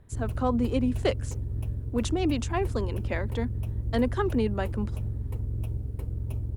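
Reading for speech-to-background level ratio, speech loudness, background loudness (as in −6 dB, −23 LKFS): 3.5 dB, −30.0 LKFS, −33.5 LKFS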